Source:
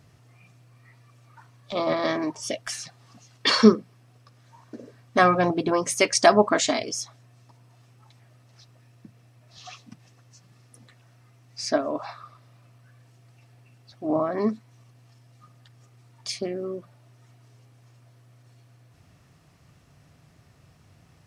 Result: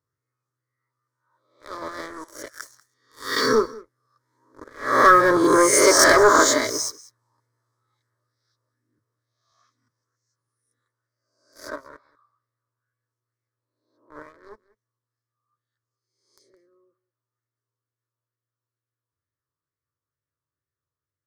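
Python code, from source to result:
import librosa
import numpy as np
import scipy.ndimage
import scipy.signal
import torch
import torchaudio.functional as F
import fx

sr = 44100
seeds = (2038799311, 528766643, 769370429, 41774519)

p1 = fx.spec_swells(x, sr, rise_s=0.74)
p2 = fx.doppler_pass(p1, sr, speed_mps=9, closest_m=7.3, pass_at_s=5.81)
p3 = scipy.signal.sosfilt(scipy.signal.butter(2, 75.0, 'highpass', fs=sr, output='sos'), p2)
p4 = fx.notch(p3, sr, hz=2400.0, q=10.0)
p5 = fx.leveller(p4, sr, passes=3)
p6 = fx.fixed_phaser(p5, sr, hz=740.0, stages=6)
p7 = p6 + fx.echo_single(p6, sr, ms=190, db=-20.5, dry=0)
p8 = fx.bell_lfo(p7, sr, hz=2.2, low_hz=930.0, high_hz=2300.0, db=7)
y = p8 * 10.0 ** (-3.0 / 20.0)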